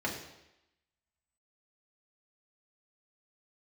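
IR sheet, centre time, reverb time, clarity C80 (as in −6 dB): 30 ms, 0.90 s, 8.5 dB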